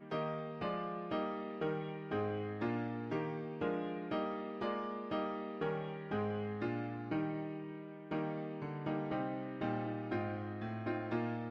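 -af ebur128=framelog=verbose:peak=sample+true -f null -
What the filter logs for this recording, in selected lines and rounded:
Integrated loudness:
  I:         -39.6 LUFS
  Threshold: -49.6 LUFS
Loudness range:
  LRA:         1.1 LU
  Threshold: -59.6 LUFS
  LRA low:   -40.3 LUFS
  LRA high:  -39.1 LUFS
Sample peak:
  Peak:      -24.6 dBFS
True peak:
  Peak:      -24.6 dBFS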